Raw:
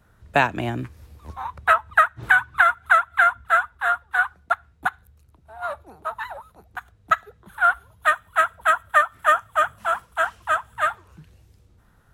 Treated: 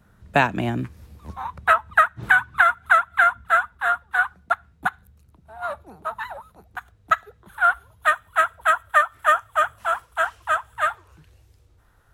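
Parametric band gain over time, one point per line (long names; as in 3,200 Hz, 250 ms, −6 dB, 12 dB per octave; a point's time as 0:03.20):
parametric band 190 Hz
0:06.17 +7 dB
0:07.13 −3 dB
0:08.42 −3 dB
0:08.87 −11.5 dB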